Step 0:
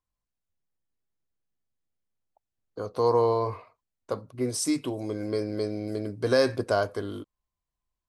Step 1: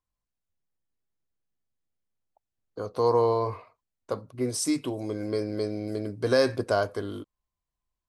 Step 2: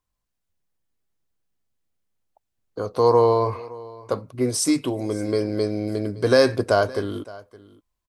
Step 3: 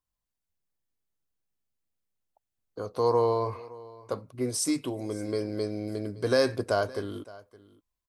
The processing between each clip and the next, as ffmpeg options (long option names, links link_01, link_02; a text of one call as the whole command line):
ffmpeg -i in.wav -af anull out.wav
ffmpeg -i in.wav -af "aecho=1:1:566:0.0944,volume=6dB" out.wav
ffmpeg -i in.wav -af "highshelf=frequency=7400:gain=4,volume=-7.5dB" out.wav